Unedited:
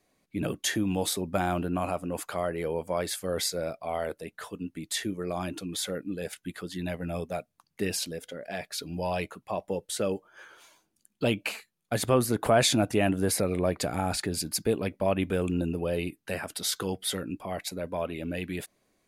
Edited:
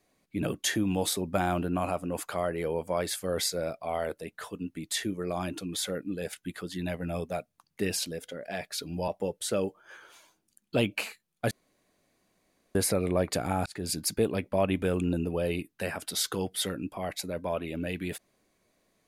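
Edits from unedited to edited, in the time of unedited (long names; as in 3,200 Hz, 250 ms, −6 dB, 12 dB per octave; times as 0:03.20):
0:09.08–0:09.56: remove
0:11.99–0:13.23: fill with room tone
0:14.14–0:14.39: fade in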